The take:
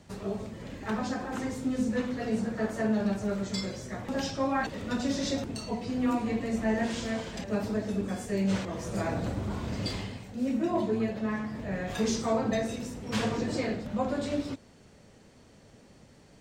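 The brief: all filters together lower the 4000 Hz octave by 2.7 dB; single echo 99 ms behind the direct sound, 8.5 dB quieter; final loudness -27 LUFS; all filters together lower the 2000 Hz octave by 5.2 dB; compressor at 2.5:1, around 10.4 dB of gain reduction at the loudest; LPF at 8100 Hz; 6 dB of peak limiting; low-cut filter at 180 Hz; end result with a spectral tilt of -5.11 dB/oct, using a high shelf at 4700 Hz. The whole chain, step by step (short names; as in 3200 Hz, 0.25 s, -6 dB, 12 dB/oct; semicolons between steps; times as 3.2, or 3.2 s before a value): HPF 180 Hz; LPF 8100 Hz; bell 2000 Hz -6.5 dB; bell 4000 Hz -4.5 dB; high shelf 4700 Hz +5.5 dB; compressor 2.5:1, threshold -41 dBFS; limiter -33.5 dBFS; echo 99 ms -8.5 dB; gain +15 dB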